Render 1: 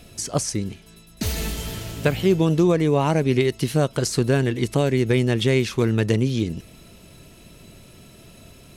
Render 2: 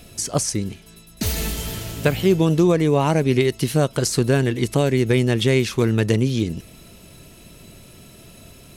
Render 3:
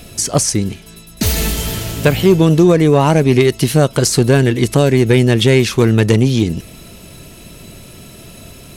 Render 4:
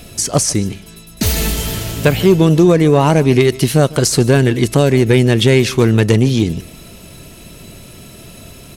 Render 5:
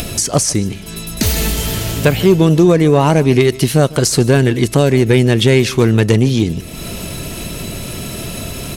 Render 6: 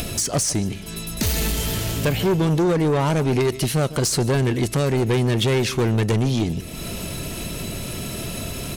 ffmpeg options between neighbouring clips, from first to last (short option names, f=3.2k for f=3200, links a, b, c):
-af "highshelf=f=9.2k:g=5.5,volume=1.5dB"
-af "asoftclip=type=tanh:threshold=-8.5dB,volume=8dB"
-af "aecho=1:1:150:0.0944"
-af "acompressor=mode=upward:threshold=-13dB:ratio=2.5"
-af "asoftclip=type=tanh:threshold=-11dB,volume=-4dB"